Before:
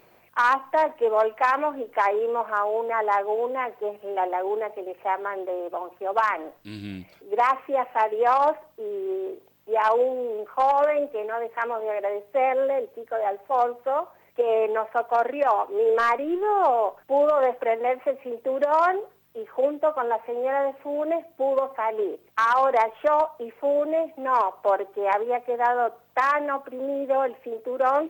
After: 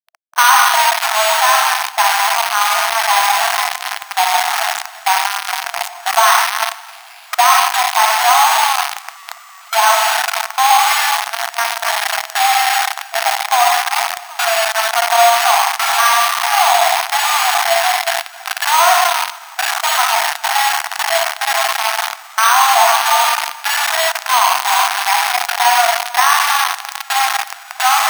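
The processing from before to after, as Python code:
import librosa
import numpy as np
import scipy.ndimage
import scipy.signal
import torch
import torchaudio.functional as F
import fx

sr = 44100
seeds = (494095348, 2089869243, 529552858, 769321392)

p1 = fx.reverse_delay(x, sr, ms=267, wet_db=-6.5)
p2 = fx.rev_freeverb(p1, sr, rt60_s=0.87, hf_ratio=0.9, predelay_ms=5, drr_db=1.5)
p3 = np.repeat(scipy.signal.resample_poly(p2, 1, 6), 6)[:len(p2)]
p4 = fx.transient(p3, sr, attack_db=1, sustain_db=8)
p5 = fx.rider(p4, sr, range_db=10, speed_s=2.0)
p6 = p4 + F.gain(torch.from_numpy(p5), -2.0).numpy()
p7 = fx.quant_companded(p6, sr, bits=2)
p8 = fx.brickwall_highpass(p7, sr, low_hz=660.0)
p9 = p8 + fx.echo_single(p8, sr, ms=263, db=-22.0, dry=0)
y = F.gain(torch.from_numpy(p9), -5.0).numpy()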